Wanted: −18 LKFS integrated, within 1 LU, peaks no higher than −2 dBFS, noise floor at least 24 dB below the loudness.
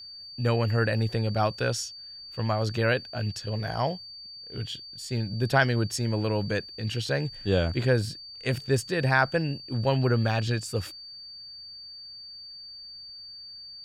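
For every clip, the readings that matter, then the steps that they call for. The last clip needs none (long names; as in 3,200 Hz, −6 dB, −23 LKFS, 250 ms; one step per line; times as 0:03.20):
interfering tone 4,600 Hz; level of the tone −41 dBFS; integrated loudness −27.5 LKFS; sample peak −8.5 dBFS; target loudness −18.0 LKFS
→ notch filter 4,600 Hz, Q 30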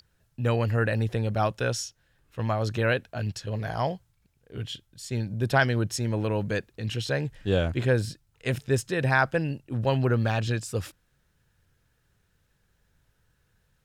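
interfering tone none found; integrated loudness −27.5 LKFS; sample peak −8.5 dBFS; target loudness −18.0 LKFS
→ level +9.5 dB
brickwall limiter −2 dBFS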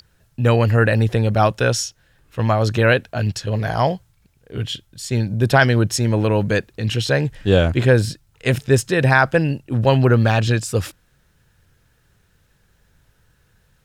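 integrated loudness −18.5 LKFS; sample peak −2.0 dBFS; background noise floor −61 dBFS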